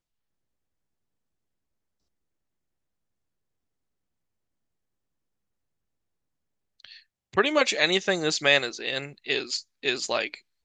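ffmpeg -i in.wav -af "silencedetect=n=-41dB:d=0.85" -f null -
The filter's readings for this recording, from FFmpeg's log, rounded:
silence_start: 0.00
silence_end: 6.80 | silence_duration: 6.80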